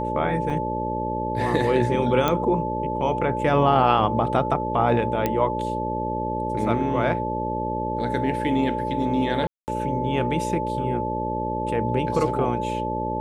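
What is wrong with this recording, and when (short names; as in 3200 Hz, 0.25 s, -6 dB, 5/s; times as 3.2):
buzz 60 Hz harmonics 10 -29 dBFS
tone 870 Hz -27 dBFS
0.5 gap 4.6 ms
2.28 pop -8 dBFS
5.26 pop -9 dBFS
9.47–9.68 gap 0.209 s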